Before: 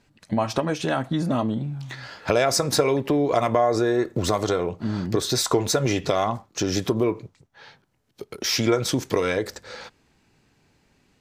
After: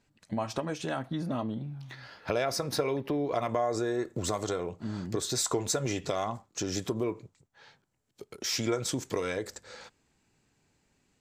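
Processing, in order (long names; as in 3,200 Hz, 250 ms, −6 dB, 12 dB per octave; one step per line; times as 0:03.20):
parametric band 7,500 Hz +4.5 dB 0.42 octaves, from 0:00.99 −7.5 dB, from 0:03.49 +9 dB
level −9 dB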